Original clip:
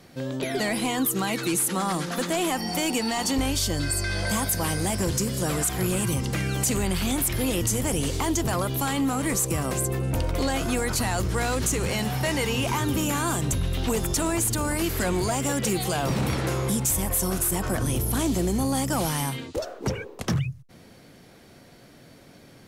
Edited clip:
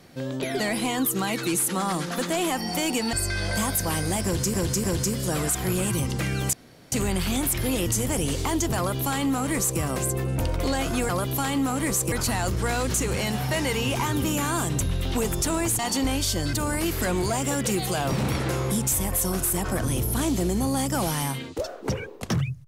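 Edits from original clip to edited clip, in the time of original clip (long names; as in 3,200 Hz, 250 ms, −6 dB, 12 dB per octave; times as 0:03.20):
0:03.13–0:03.87: move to 0:14.51
0:04.98–0:05.28: repeat, 3 plays
0:06.67: splice in room tone 0.39 s
0:08.52–0:09.55: duplicate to 0:10.84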